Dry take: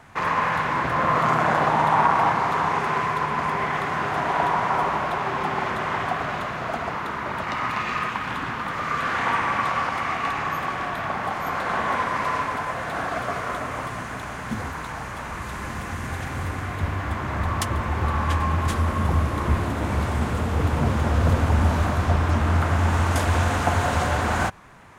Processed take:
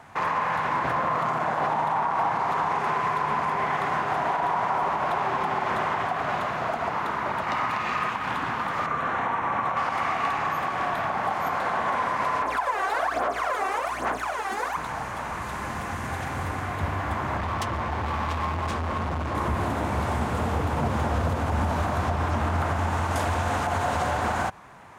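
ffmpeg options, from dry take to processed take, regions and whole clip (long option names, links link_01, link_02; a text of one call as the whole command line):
ffmpeg -i in.wav -filter_complex "[0:a]asettb=1/sr,asplit=3[link_01][link_02][link_03];[link_01]atrim=end=8.864[link_04];[link_02]atrim=start=8.86:end=9.77,asetpts=PTS-STARTPTS,afade=type=in:duration=0.004:curve=qsin,afade=type=out:start_time=0.906:duration=0.004:curve=qsin,highshelf=frequency=2000:gain=-10,bandreject=frequency=4800:width=5.6[link_05];[link_03]atrim=start=9.766[link_06];[link_04][link_05]acrossfade=duration=0.004:curve1=hsin:curve2=qsin[link_07];[link_07][link_06]acrossfade=duration=0.004:curve1=qsin:curve2=hsin,asettb=1/sr,asplit=3[link_08][link_09][link_10];[link_08]atrim=end=12.424[link_11];[link_09]atrim=start=12.42:end=14.77,asetpts=PTS-STARTPTS,afade=type=in:duration=0.004:curve=qsin,afade=type=out:start_time=2.346:duration=0.004:curve=qsin,highpass=frequency=290:width=0.5412,highpass=frequency=290:width=1.3066,aeval=exprs='val(0)+0.00316*(sin(2*PI*60*n/s)+sin(2*PI*2*60*n/s)/2+sin(2*PI*3*60*n/s)/3+sin(2*PI*4*60*n/s)/4+sin(2*PI*5*60*n/s)/5)':channel_layout=same,aphaser=in_gain=1:out_gain=1:delay=2.6:decay=0.74:speed=1.2:type=sinusoidal[link_12];[link_10]atrim=start=14.766[link_13];[link_11][link_12]acrossfade=duration=0.004:curve1=hsin:curve2=qsin[link_14];[link_14][link_13]acrossfade=duration=0.004:curve1=qsin:curve2=hsin,asettb=1/sr,asplit=3[link_15][link_16][link_17];[link_15]atrim=end=17.374[link_18];[link_16]atrim=start=17.37:end=19.35,asetpts=PTS-STARTPTS,afade=type=in:duration=0.004:curve=qsin,afade=type=out:start_time=1.976:duration=0.004:curve=qsin,lowpass=6400,volume=24dB,asoftclip=hard,volume=-24dB[link_19];[link_17]atrim=start=19.346[link_20];[link_18][link_19]acrossfade=duration=0.004:curve1=hsin:curve2=qsin[link_21];[link_21][link_20]acrossfade=duration=0.004:curve1=qsin:curve2=hsin,highpass=frequency=67:poles=1,equalizer=frequency=800:width_type=o:width=0.99:gain=5.5,alimiter=limit=-15dB:level=0:latency=1:release=92,volume=-1.5dB" out.wav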